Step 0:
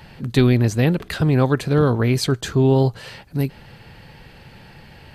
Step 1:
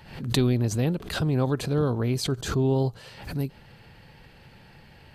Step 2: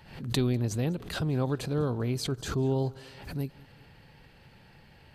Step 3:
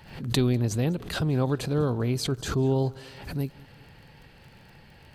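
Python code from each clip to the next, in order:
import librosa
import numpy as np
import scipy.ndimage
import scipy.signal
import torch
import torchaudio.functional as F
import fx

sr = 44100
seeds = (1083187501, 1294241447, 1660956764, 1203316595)

y1 = fx.dynamic_eq(x, sr, hz=1900.0, q=1.5, threshold_db=-42.0, ratio=4.0, max_db=-7)
y1 = fx.pre_swell(y1, sr, db_per_s=91.0)
y1 = y1 * 10.0 ** (-7.5 / 20.0)
y2 = fx.echo_feedback(y1, sr, ms=198, feedback_pct=54, wet_db=-23.5)
y2 = y2 * 10.0 ** (-4.5 / 20.0)
y3 = fx.dmg_crackle(y2, sr, seeds[0], per_s=27.0, level_db=-47.0)
y3 = y3 * 10.0 ** (3.5 / 20.0)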